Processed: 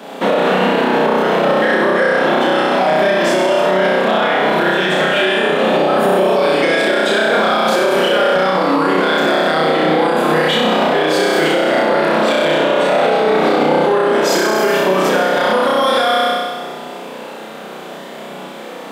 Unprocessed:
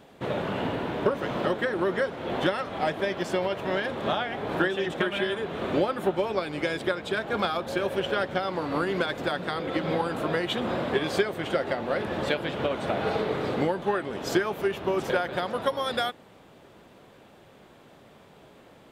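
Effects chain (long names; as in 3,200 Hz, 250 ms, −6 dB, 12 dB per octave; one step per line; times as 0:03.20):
low-shelf EQ 340 Hz −5 dB
downward compressor, threshold −29 dBFS, peak gain reduction 9.5 dB
Chebyshev high-pass with heavy ripple 160 Hz, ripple 3 dB
gain into a clipping stage and back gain 23 dB
on a send: flutter between parallel walls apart 5.5 metres, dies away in 1.5 s
on the sum: boost into a limiter +25 dB
level −4.5 dB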